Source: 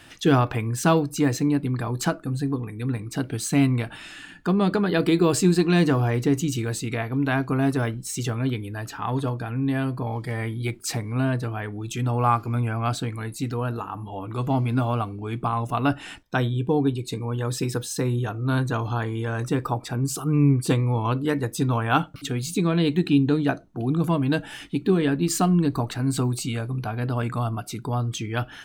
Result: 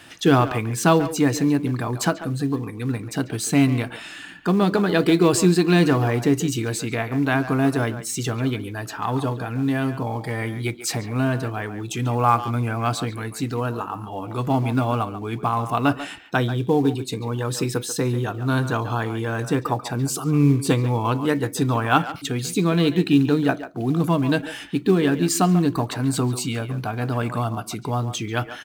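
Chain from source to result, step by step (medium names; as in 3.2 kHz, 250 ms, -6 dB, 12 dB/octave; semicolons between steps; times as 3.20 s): high-pass 120 Hz 6 dB/octave; speakerphone echo 140 ms, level -11 dB; in parallel at -10.5 dB: short-mantissa float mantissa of 2-bit; on the sum: trim +1 dB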